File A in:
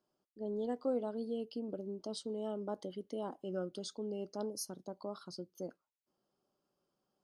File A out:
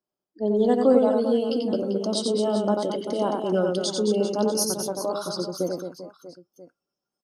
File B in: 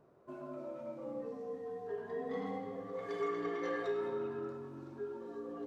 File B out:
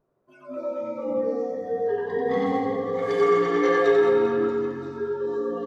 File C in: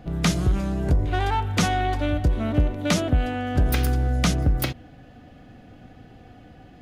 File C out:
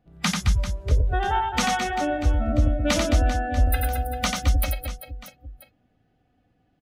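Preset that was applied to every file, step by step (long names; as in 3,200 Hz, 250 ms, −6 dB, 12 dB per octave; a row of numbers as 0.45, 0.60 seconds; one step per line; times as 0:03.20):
noise reduction from a noise print of the clip's start 23 dB
reverse bouncing-ball delay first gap 90 ms, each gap 1.4×, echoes 5
loudness normalisation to −24 LKFS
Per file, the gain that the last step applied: +16.0, +14.0, +0.5 decibels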